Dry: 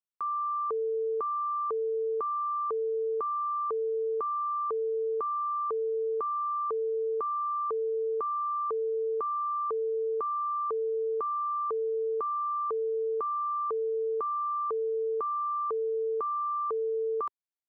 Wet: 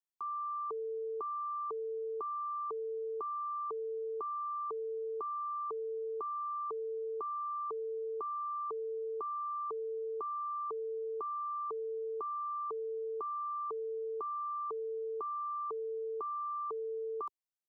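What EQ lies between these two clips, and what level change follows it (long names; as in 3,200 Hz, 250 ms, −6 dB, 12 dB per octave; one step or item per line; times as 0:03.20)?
phaser with its sweep stopped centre 350 Hz, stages 8
−3.5 dB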